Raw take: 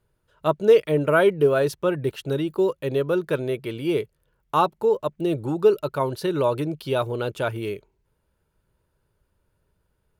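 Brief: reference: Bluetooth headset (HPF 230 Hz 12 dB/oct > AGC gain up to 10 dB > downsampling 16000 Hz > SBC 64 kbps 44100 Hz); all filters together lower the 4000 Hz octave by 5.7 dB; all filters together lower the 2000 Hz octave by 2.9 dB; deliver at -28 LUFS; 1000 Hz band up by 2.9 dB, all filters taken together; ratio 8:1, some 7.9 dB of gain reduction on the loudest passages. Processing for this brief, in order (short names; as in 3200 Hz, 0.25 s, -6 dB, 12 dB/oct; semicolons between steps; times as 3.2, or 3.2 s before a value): bell 1000 Hz +5.5 dB; bell 2000 Hz -7 dB; bell 4000 Hz -5 dB; compressor 8:1, threshold -18 dBFS; HPF 230 Hz 12 dB/oct; AGC gain up to 10 dB; downsampling 16000 Hz; gain -1.5 dB; SBC 64 kbps 44100 Hz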